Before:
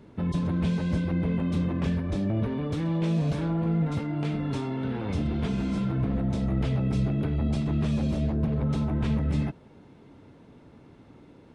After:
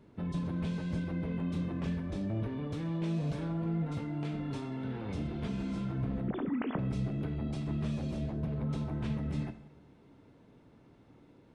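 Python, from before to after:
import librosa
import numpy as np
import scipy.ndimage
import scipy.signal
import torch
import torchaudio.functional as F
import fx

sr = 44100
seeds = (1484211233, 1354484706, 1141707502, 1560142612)

y = fx.sine_speech(x, sr, at=(6.28, 6.79))
y = fx.vibrato(y, sr, rate_hz=1.4, depth_cents=5.1)
y = fx.rev_double_slope(y, sr, seeds[0], early_s=0.7, late_s=2.1, knee_db=-18, drr_db=9.5)
y = F.gain(torch.from_numpy(y), -8.0).numpy()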